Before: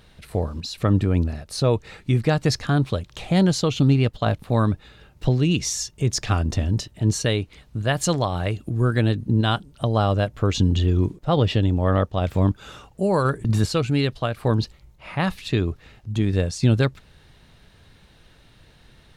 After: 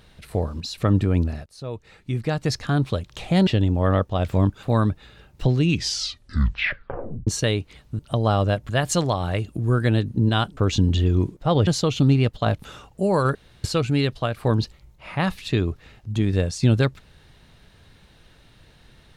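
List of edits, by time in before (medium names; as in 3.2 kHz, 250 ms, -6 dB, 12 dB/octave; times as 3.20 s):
1.46–2.97 s: fade in linear, from -20.5 dB
3.47–4.45 s: swap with 11.49–12.65 s
5.46 s: tape stop 1.63 s
9.69–10.39 s: move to 7.81 s
13.35–13.64 s: room tone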